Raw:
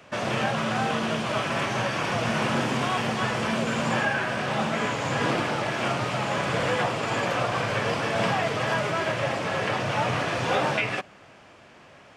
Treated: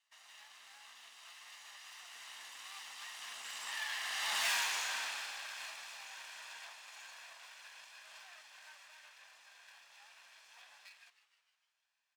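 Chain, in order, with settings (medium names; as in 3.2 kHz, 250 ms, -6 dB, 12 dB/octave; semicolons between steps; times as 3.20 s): comb filter that takes the minimum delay 1.1 ms; Doppler pass-by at 4.48 s, 21 m/s, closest 1.8 m; treble shelf 2.9 kHz +12 dB; frequency-shifting echo 153 ms, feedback 59%, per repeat +130 Hz, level -14 dB; saturation -32.5 dBFS, distortion -6 dB; high-pass 1.2 kHz 12 dB/octave; trim +3.5 dB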